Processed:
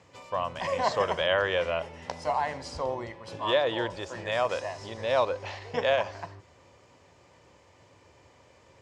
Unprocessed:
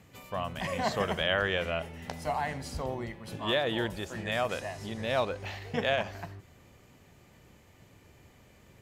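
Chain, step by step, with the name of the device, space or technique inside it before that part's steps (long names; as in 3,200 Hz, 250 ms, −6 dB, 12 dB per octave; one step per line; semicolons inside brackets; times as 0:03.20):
car door speaker (loudspeaker in its box 82–8,100 Hz, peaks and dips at 140 Hz −6 dB, 210 Hz −10 dB, 540 Hz +7 dB, 990 Hz +9 dB, 5,200 Hz +5 dB)
0:03.51–0:04.02: low-pass filter 8,200 Hz 12 dB per octave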